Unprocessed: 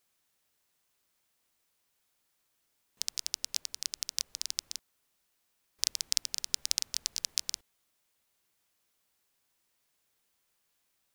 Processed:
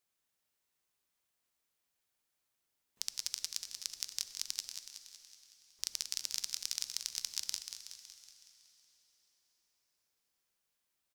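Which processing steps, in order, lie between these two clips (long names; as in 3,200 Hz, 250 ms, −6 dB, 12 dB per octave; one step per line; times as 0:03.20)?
output level in coarse steps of 12 dB
repeating echo 186 ms, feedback 56%, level −8 dB
dense smooth reverb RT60 4.3 s, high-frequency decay 0.95×, DRR 12 dB
level −1 dB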